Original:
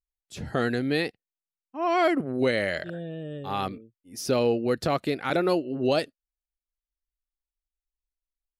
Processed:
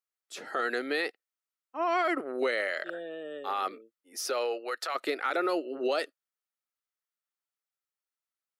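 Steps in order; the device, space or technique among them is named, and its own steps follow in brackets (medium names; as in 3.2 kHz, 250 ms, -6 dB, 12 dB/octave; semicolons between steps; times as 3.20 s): laptop speaker (high-pass 360 Hz 24 dB/octave; peaking EQ 1.3 kHz +9.5 dB 0.32 oct; peaking EQ 1.9 kHz +4 dB 0.33 oct; peak limiter -20 dBFS, peak gain reduction 10.5 dB); 4.17–4.94 s: high-pass 340 Hz -> 990 Hz 12 dB/octave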